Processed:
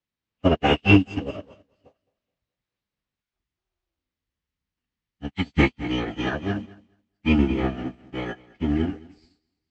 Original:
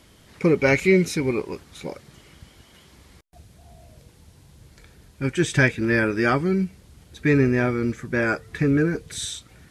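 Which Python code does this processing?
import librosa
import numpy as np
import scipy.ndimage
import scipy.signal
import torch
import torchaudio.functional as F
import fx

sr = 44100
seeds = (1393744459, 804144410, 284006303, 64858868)

p1 = scipy.signal.sosfilt(scipy.signal.butter(2, 68.0, 'highpass', fs=sr, output='sos'), x)
p2 = fx.pitch_keep_formants(p1, sr, semitones=-11.0)
p3 = fx.dmg_noise_band(p2, sr, seeds[0], low_hz=950.0, high_hz=7500.0, level_db=-53.0)
p4 = fx.formant_shift(p3, sr, semitones=4)
p5 = fx.air_absorb(p4, sr, metres=170.0)
p6 = p5 + fx.echo_feedback(p5, sr, ms=213, feedback_pct=44, wet_db=-9, dry=0)
p7 = fx.upward_expand(p6, sr, threshold_db=-41.0, expansion=2.5)
y = F.gain(torch.from_numpy(p7), 4.5).numpy()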